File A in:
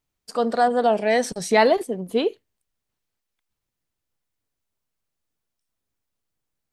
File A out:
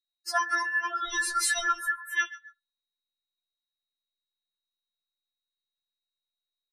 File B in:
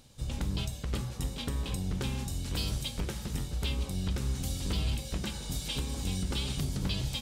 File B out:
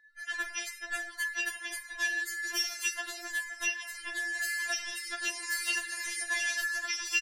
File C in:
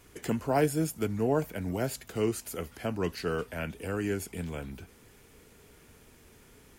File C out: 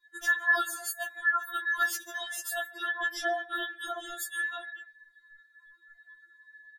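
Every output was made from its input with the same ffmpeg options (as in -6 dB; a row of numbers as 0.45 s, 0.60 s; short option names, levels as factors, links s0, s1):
-filter_complex "[0:a]afftfilt=real='real(if(between(b,1,1012),(2*floor((b-1)/92)+1)*92-b,b),0)':imag='imag(if(between(b,1,1012),(2*floor((b-1)/92)+1)*92-b,b),0)*if(between(b,1,1012),-1,1)':win_size=2048:overlap=0.75,lowshelf=f=110:g=-5.5,asplit=2[s0][s1];[s1]aecho=0:1:138|276:0.1|0.026[s2];[s0][s2]amix=inputs=2:normalize=0,acompressor=threshold=0.0631:ratio=16,bandreject=f=110.1:t=h:w=4,bandreject=f=220.2:t=h:w=4,bandreject=f=330.3:t=h:w=4,bandreject=f=440.4:t=h:w=4,bandreject=f=550.5:t=h:w=4,bandreject=f=660.6:t=h:w=4,bandreject=f=770.7:t=h:w=4,adynamicequalizer=threshold=0.01:dfrequency=1700:dqfactor=0.92:tfrequency=1700:tqfactor=0.92:attack=5:release=100:ratio=0.375:range=2:mode=cutabove:tftype=bell,aeval=exprs='val(0)+0.002*sin(2*PI*3900*n/s)':c=same,afftdn=nr=33:nf=-53,afftfilt=real='re*4*eq(mod(b,16),0)':imag='im*4*eq(mod(b,16),0)':win_size=2048:overlap=0.75,volume=2.51"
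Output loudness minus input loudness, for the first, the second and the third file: -6.5 LU, +2.0 LU, +1.5 LU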